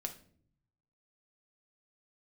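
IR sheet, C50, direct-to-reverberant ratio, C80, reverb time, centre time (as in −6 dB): 12.0 dB, 3.5 dB, 17.0 dB, non-exponential decay, 9 ms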